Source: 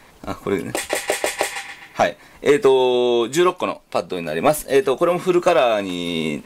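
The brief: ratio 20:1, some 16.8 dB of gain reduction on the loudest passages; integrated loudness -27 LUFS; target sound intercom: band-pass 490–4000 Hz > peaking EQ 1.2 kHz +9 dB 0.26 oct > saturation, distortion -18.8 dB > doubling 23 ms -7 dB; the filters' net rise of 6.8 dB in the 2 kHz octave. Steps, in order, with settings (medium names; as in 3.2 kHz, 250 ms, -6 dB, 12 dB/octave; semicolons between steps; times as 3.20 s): peaking EQ 2 kHz +8 dB; compression 20:1, threshold -26 dBFS; band-pass 490–4000 Hz; peaking EQ 1.2 kHz +9 dB 0.26 oct; saturation -19.5 dBFS; doubling 23 ms -7 dB; trim +5 dB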